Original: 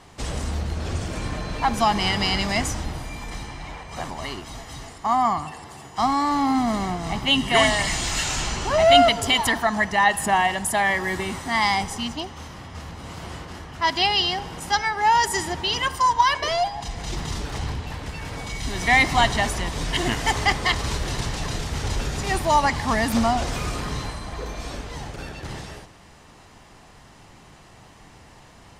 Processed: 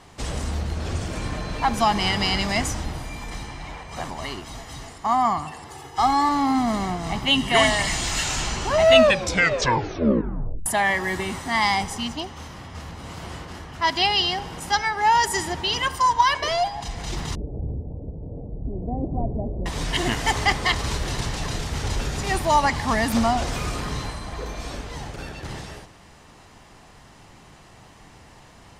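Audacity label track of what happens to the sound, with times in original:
5.700000	6.290000	comb 2.4 ms, depth 73%
8.840000	8.840000	tape stop 1.82 s
17.350000	19.660000	steep low-pass 590 Hz

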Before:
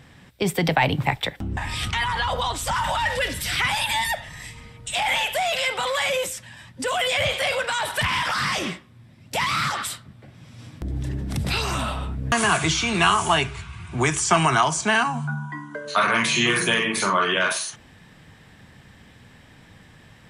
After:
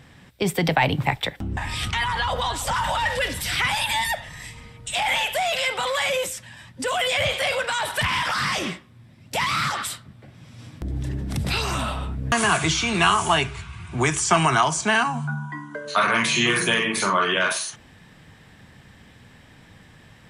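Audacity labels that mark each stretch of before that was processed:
2.040000	2.450000	echo throw 320 ms, feedback 60%, level -13 dB

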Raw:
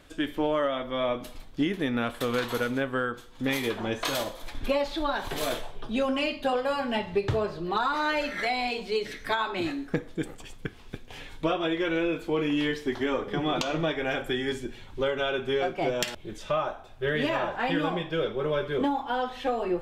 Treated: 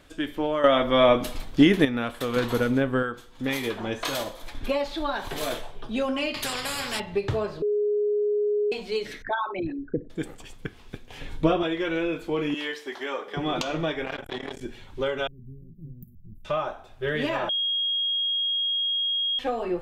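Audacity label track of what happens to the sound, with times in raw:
0.640000	1.850000	gain +10 dB
2.360000	3.030000	bass shelf 470 Hz +9 dB
6.340000	7.000000	spectrum-flattening compressor 4:1
7.620000	8.720000	bleep 416 Hz -21 dBFS
9.220000	10.100000	resonances exaggerated exponent 3
11.210000	11.630000	bass shelf 500 Hz +10 dB
12.540000	13.370000	high-pass 510 Hz
14.050000	14.610000	transformer saturation saturates under 1 kHz
15.270000	16.450000	inverse Chebyshev band-stop 730–5800 Hz, stop band 70 dB
17.490000	19.390000	bleep 3.27 kHz -23 dBFS

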